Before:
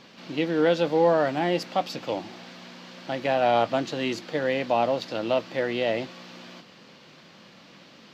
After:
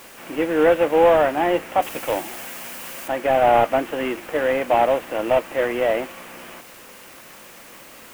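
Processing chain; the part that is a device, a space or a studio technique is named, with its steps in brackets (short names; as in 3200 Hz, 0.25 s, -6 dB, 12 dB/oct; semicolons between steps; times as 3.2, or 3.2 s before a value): army field radio (BPF 340–3000 Hz; CVSD 16 kbps; white noise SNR 25 dB); 1.82–3.08 high shelf 3700 Hz +11 dB; gain +7.5 dB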